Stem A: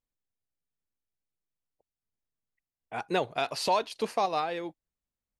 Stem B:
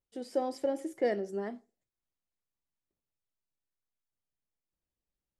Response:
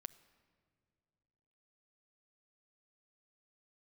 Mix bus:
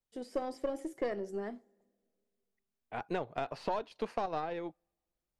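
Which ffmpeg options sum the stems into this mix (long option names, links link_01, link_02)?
-filter_complex "[0:a]aemphasis=mode=reproduction:type=50kf,volume=-2.5dB,asplit=2[link_01][link_02];[link_02]volume=-23.5dB[link_03];[1:a]volume=-2dB,asplit=2[link_04][link_05];[link_05]volume=-9dB[link_06];[2:a]atrim=start_sample=2205[link_07];[link_03][link_06]amix=inputs=2:normalize=0[link_08];[link_08][link_07]afir=irnorm=-1:irlink=0[link_09];[link_01][link_04][link_09]amix=inputs=3:normalize=0,aeval=exprs='0.126*(cos(1*acos(clip(val(0)/0.126,-1,1)))-cos(1*PI/2))+0.0112*(cos(4*acos(clip(val(0)/0.126,-1,1)))-cos(4*PI/2))+0.00282*(cos(7*acos(clip(val(0)/0.126,-1,1)))-cos(7*PI/2))':channel_layout=same,acrossover=split=890|2400[link_10][link_11][link_12];[link_10]acompressor=threshold=-32dB:ratio=4[link_13];[link_11]acompressor=threshold=-43dB:ratio=4[link_14];[link_12]acompressor=threshold=-56dB:ratio=4[link_15];[link_13][link_14][link_15]amix=inputs=3:normalize=0"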